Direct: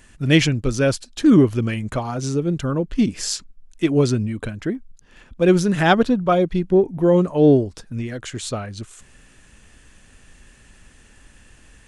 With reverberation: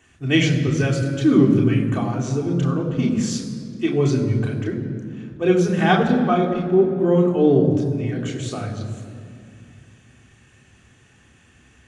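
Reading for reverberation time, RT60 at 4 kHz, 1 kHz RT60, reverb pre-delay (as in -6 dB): 2.4 s, 1.5 s, 2.3 s, 3 ms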